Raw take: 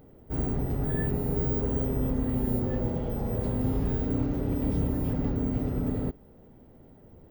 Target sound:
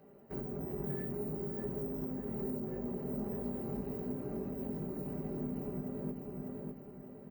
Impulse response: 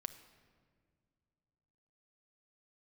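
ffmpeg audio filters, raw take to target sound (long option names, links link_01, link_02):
-filter_complex "[0:a]bass=frequency=250:gain=-6,treble=frequency=4000:gain=-10,aeval=exprs='(tanh(31.6*val(0)+0.75)-tanh(0.75))/31.6':channel_layout=same,flanger=delay=18.5:depth=3.2:speed=1.5,acrossover=split=490|7000[link_01][link_02][link_03];[link_02]acompressor=threshold=-59dB:ratio=4[link_04];[link_01][link_04][link_03]amix=inputs=3:normalize=0,highpass=93,highshelf=frequency=6600:gain=7,aecho=1:1:600|1200|1800|2400|3000:0.473|0.185|0.072|0.0281|0.0109,alimiter=level_in=10dB:limit=-24dB:level=0:latency=1:release=385,volume=-10dB,asuperstop=centerf=3400:order=4:qfactor=5.4,aecho=1:1:5.1:0.65,volume=4dB"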